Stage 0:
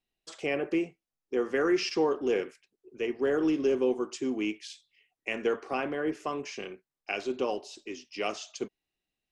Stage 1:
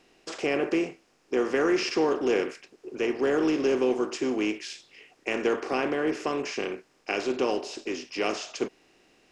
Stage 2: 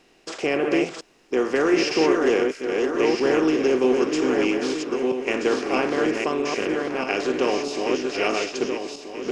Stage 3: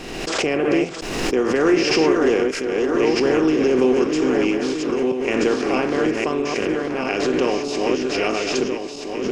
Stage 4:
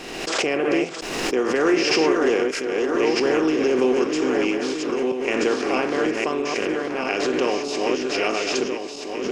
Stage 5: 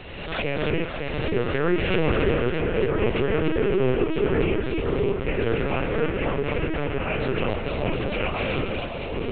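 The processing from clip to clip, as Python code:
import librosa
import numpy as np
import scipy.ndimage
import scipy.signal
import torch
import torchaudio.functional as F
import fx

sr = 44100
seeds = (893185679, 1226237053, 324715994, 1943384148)

y1 = fx.bin_compress(x, sr, power=0.6)
y2 = fx.reverse_delay_fb(y1, sr, ms=640, feedback_pct=53, wet_db=-3.0)
y2 = y2 * librosa.db_to_amplitude(3.5)
y3 = fx.low_shelf(y2, sr, hz=190.0, db=9.0)
y3 = fx.pre_swell(y3, sr, db_per_s=36.0)
y4 = fx.low_shelf(y3, sr, hz=190.0, db=-11.5)
y5 = fx.echo_split(y4, sr, split_hz=960.0, low_ms=559, high_ms=278, feedback_pct=52, wet_db=-4)
y5 = fx.lpc_vocoder(y5, sr, seeds[0], excitation='pitch_kept', order=10)
y5 = y5 * librosa.db_to_amplitude(-3.5)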